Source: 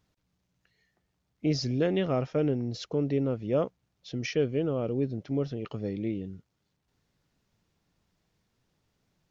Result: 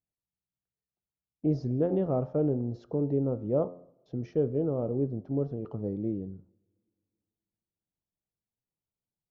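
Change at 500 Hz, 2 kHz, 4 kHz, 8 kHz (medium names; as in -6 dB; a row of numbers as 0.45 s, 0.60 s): -0.5 dB, under -15 dB, under -20 dB, no reading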